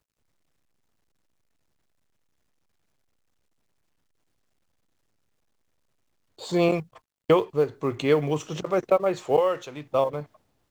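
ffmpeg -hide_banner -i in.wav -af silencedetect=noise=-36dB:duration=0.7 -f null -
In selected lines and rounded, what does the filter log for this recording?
silence_start: 0.00
silence_end: 6.41 | silence_duration: 6.41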